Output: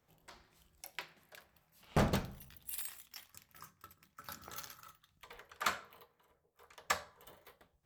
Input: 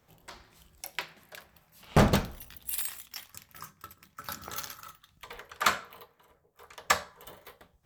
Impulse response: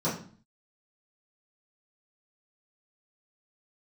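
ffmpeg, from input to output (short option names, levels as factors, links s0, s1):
-filter_complex "[0:a]asplit=2[s0][s1];[1:a]atrim=start_sample=2205,asetrate=31311,aresample=44100[s2];[s1][s2]afir=irnorm=-1:irlink=0,volume=0.0237[s3];[s0][s3]amix=inputs=2:normalize=0,volume=0.355"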